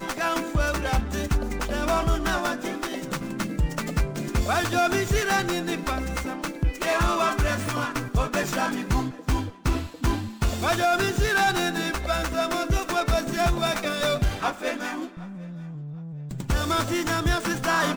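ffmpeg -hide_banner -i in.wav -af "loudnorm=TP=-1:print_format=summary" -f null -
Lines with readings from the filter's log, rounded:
Input Integrated:    -25.7 LUFS
Input True Peak:     -12.7 dBTP
Input LRA:             2.7 LU
Input Threshold:     -36.1 LUFS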